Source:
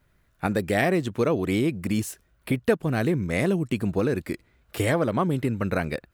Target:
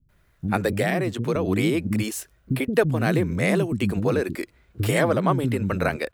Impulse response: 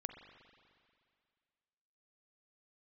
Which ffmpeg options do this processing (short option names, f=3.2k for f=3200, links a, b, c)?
-filter_complex "[0:a]asettb=1/sr,asplit=3[a][b][c];[a]atrim=end=0.724[d];[b]atrim=start=0.72:end=1.36,asetpts=PTS-STARTPTS,afade=t=in:d=0.004:c=qsin,afade=t=out:st=0.636:d=0.004:c=qsin,acrossover=split=210[e][f];[f]acompressor=threshold=-25dB:ratio=4[g];[e][g]amix=inputs=2:normalize=0[h];[c]atrim=start=1.356[i];[d][h]acrossfade=d=0.004:c1=hsin:c2=qsin[j];[j][i]acrossfade=d=0.004:c1=qsin:c2=hsin,acrossover=split=270[k][l];[l]adelay=90[m];[k][m]amix=inputs=2:normalize=0,volume=3.5dB"